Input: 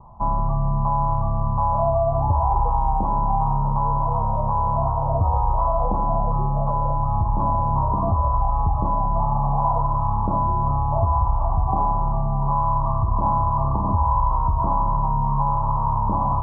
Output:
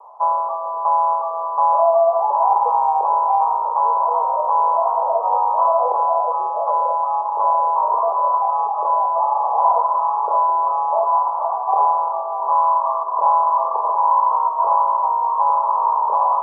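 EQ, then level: steep high-pass 430 Hz 72 dB/oct; +6.5 dB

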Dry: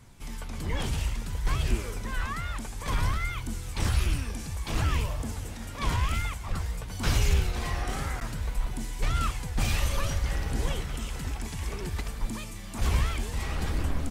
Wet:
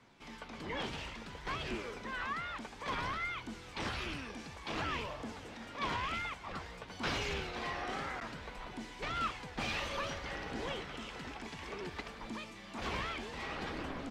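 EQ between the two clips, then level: three-band isolator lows -12 dB, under 190 Hz, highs -23 dB, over 5000 Hz; low shelf 100 Hz -10.5 dB; -2.5 dB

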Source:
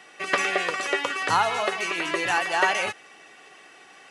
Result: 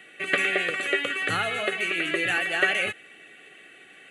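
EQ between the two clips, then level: fixed phaser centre 2300 Hz, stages 4; +2.5 dB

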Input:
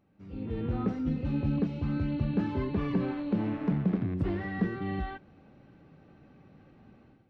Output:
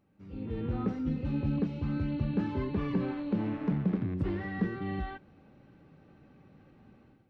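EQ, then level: notch 690 Hz, Q 14; -1.5 dB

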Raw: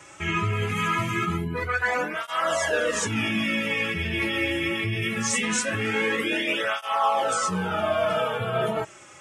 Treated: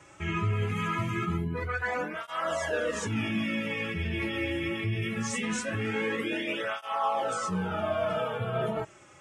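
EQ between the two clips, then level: tilt -1.5 dB/oct; -6.0 dB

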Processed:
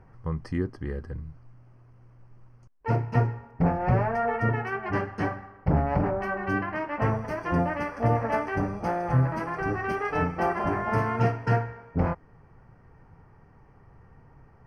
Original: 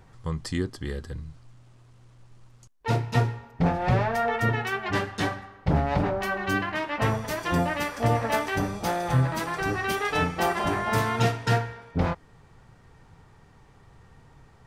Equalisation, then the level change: running mean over 12 samples; 0.0 dB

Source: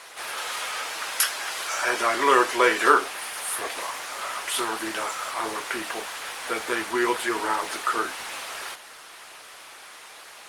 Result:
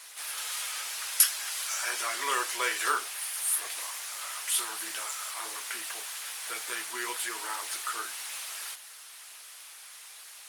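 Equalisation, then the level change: tilt +4.5 dB/oct; -12.0 dB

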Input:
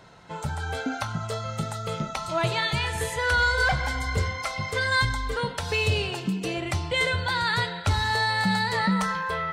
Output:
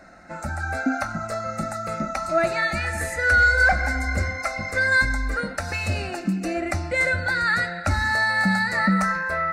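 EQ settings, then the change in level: high shelf 7100 Hz -8 dB; fixed phaser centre 650 Hz, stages 8; +7.0 dB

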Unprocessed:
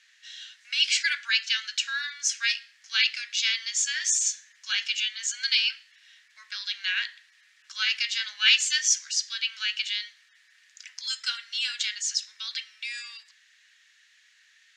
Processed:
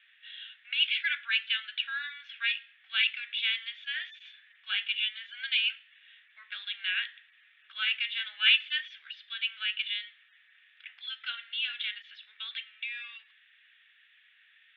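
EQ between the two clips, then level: bell 1000 Hz -13 dB 0.29 oct; dynamic EQ 2100 Hz, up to -3 dB, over -35 dBFS, Q 0.75; rippled Chebyshev low-pass 3600 Hz, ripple 3 dB; +2.0 dB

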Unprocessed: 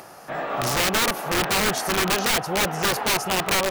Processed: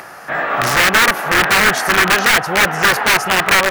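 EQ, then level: bell 1700 Hz +11 dB 1.2 oct; +4.5 dB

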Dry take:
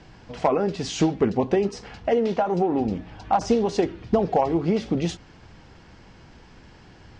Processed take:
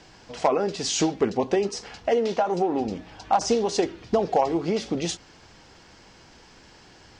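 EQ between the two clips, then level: tone controls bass -8 dB, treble +9 dB; 0.0 dB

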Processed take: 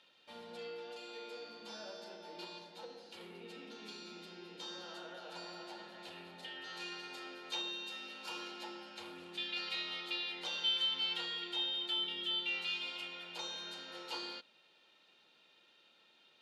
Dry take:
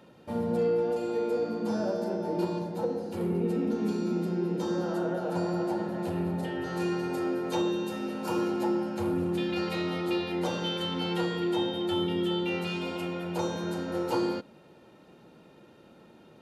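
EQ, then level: band-pass 3500 Hz, Q 2.1; +3.5 dB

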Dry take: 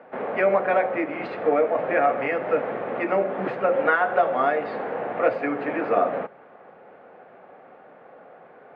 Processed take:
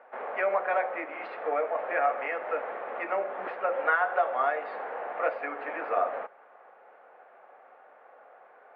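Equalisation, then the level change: HPF 800 Hz 12 dB/oct; air absorption 84 m; high shelf 2300 Hz -9 dB; 0.0 dB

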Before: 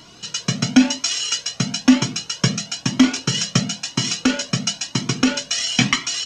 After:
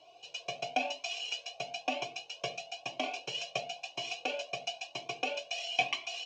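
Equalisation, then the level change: vowel filter a; fixed phaser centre 530 Hz, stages 4; dynamic EQ 1800 Hz, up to +4 dB, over -50 dBFS, Q 0.71; +3.0 dB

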